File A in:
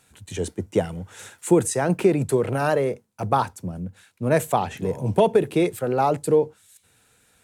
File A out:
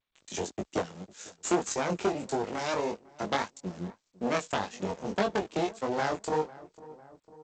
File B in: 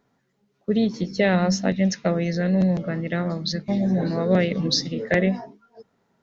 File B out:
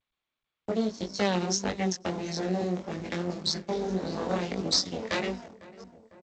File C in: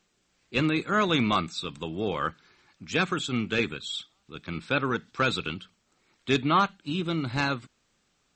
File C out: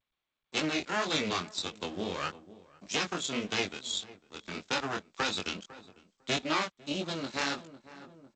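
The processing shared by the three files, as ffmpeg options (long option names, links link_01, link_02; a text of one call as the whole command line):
ffmpeg -i in.wav -filter_complex "[0:a]lowshelf=frequency=150:width_type=q:width=3:gain=-8,acrossover=split=100|1100[link_01][link_02][link_03];[link_01]aeval=exprs='(mod(237*val(0)+1,2)-1)/237':channel_layout=same[link_04];[link_04][link_02][link_03]amix=inputs=3:normalize=0,acompressor=threshold=-29dB:ratio=2,aeval=exprs='sgn(val(0))*max(abs(val(0))-0.00708,0)':channel_layout=same,aeval=exprs='0.188*(cos(1*acos(clip(val(0)/0.188,-1,1)))-cos(1*PI/2))+0.00422*(cos(2*acos(clip(val(0)/0.188,-1,1)))-cos(2*PI/2))+0.075*(cos(4*acos(clip(val(0)/0.188,-1,1)))-cos(4*PI/2))+0.00168*(cos(5*acos(clip(val(0)/0.188,-1,1)))-cos(5*PI/2))+0.0015*(cos(6*acos(clip(val(0)/0.188,-1,1)))-cos(6*PI/2))':channel_layout=same,flanger=delay=19:depth=4.3:speed=1.7,highpass=frequency=56:width=0.5412,highpass=frequency=56:width=1.3066,bass=frequency=250:gain=-5,treble=frequency=4000:gain=12,asplit=2[link_05][link_06];[link_06]adelay=501,lowpass=frequency=1200:poles=1,volume=-22dB,asplit=2[link_07][link_08];[link_08]adelay=501,lowpass=frequency=1200:poles=1,volume=0.29[link_09];[link_05][link_07][link_09]amix=inputs=3:normalize=0,areverse,acompressor=mode=upward:threshold=-40dB:ratio=2.5,areverse" -ar 16000 -c:a g722 out.g722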